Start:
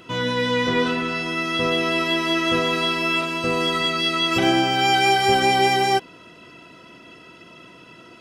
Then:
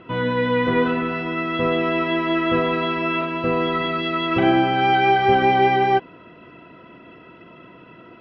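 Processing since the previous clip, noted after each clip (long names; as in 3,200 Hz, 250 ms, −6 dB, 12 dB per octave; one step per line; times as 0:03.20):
Bessel low-pass filter 1,900 Hz, order 4
level +2.5 dB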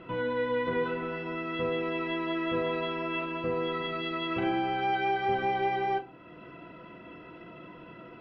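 downward compressor 1.5 to 1, threshold −40 dBFS, peak gain reduction 10 dB
rectangular room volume 120 cubic metres, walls furnished, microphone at 0.74 metres
level −4 dB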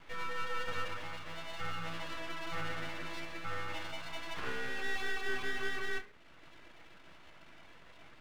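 single-sideband voice off tune +170 Hz 390–2,200 Hz
full-wave rectification
flanger 0.47 Hz, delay 6.9 ms, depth 5.6 ms, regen −82%
level +1 dB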